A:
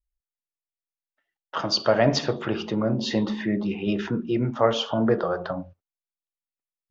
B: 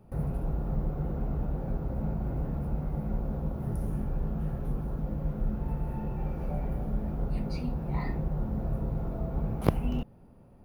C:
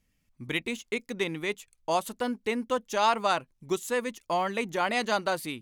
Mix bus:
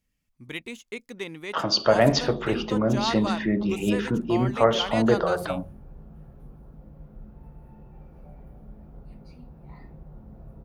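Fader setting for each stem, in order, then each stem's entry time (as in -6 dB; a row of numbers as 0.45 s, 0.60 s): +1.0 dB, -14.0 dB, -5.0 dB; 0.00 s, 1.75 s, 0.00 s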